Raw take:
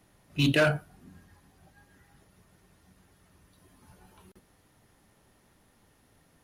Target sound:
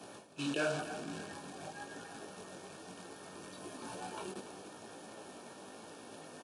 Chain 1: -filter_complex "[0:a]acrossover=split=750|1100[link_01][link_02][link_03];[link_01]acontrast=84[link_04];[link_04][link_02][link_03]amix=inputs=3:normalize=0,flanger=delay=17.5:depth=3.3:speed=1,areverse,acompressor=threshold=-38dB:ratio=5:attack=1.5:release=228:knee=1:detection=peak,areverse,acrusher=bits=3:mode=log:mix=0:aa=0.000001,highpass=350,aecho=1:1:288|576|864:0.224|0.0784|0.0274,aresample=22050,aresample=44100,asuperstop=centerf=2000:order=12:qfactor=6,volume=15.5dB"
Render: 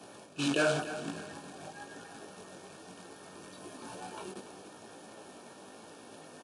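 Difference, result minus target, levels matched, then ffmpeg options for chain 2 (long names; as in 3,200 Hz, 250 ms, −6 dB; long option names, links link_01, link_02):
downward compressor: peak gain reduction −6 dB
-filter_complex "[0:a]acrossover=split=750|1100[link_01][link_02][link_03];[link_01]acontrast=84[link_04];[link_04][link_02][link_03]amix=inputs=3:normalize=0,flanger=delay=17.5:depth=3.3:speed=1,areverse,acompressor=threshold=-45.5dB:ratio=5:attack=1.5:release=228:knee=1:detection=peak,areverse,acrusher=bits=3:mode=log:mix=0:aa=0.000001,highpass=350,aecho=1:1:288|576|864:0.224|0.0784|0.0274,aresample=22050,aresample=44100,asuperstop=centerf=2000:order=12:qfactor=6,volume=15.5dB"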